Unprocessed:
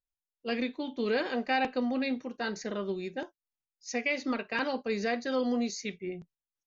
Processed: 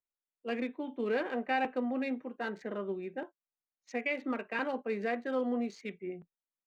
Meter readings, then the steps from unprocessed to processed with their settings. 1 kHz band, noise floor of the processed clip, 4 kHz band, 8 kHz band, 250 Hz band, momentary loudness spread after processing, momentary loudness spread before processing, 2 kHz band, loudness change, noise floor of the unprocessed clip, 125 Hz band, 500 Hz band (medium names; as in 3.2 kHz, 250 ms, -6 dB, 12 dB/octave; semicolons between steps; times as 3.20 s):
-2.0 dB, under -85 dBFS, -10.0 dB, no reading, -3.5 dB, 10 LU, 11 LU, -3.5 dB, -3.0 dB, under -85 dBFS, -5.0 dB, -2.0 dB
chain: local Wiener filter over 9 samples; three-band isolator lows -13 dB, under 170 Hz, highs -14 dB, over 3.3 kHz; trim -2 dB